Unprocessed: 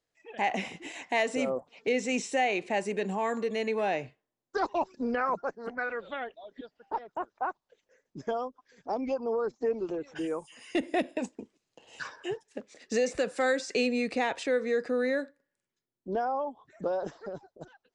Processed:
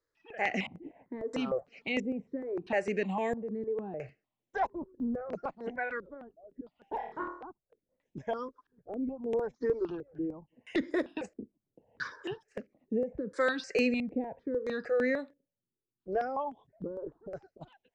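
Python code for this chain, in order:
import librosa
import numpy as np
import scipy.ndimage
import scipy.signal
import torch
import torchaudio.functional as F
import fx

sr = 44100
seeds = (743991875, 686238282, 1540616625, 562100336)

y = fx.filter_lfo_lowpass(x, sr, shape='square', hz=0.75, low_hz=390.0, high_hz=4700.0, q=0.77)
y = fx.room_flutter(y, sr, wall_m=4.4, rt60_s=0.52, at=(6.96, 7.42))
y = fx.phaser_held(y, sr, hz=6.6, low_hz=740.0, high_hz=4600.0)
y = y * 10.0 ** (2.0 / 20.0)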